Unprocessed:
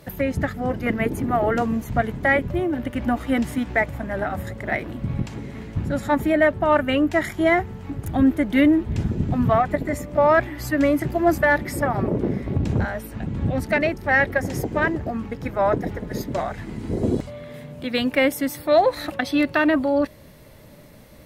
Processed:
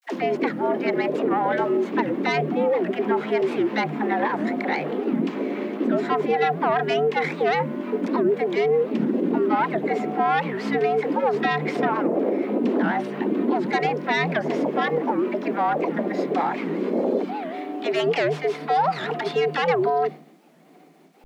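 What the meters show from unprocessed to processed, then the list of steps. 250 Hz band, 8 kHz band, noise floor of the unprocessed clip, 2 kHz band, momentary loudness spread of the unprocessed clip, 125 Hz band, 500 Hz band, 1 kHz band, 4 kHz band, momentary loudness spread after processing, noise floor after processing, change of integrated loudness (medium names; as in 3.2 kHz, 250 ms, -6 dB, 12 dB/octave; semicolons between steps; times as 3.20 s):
-2.5 dB, under -10 dB, -46 dBFS, -4.0 dB, 11 LU, -8.0 dB, +0.5 dB, +2.0 dB, 0.0 dB, 4 LU, -50 dBFS, -1.0 dB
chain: tracing distortion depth 0.23 ms; in parallel at +2 dB: compression, threshold -26 dBFS, peak gain reduction 13.5 dB; on the sum: low-pass 3.1 kHz 12 dB/octave; peak limiter -14.5 dBFS, peak gain reduction 10 dB; hum notches 50/100 Hz; expander -30 dBFS; bit crusher 11-bit; frequency shift +150 Hz; phase dispersion lows, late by 63 ms, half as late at 450 Hz; warped record 78 rpm, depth 250 cents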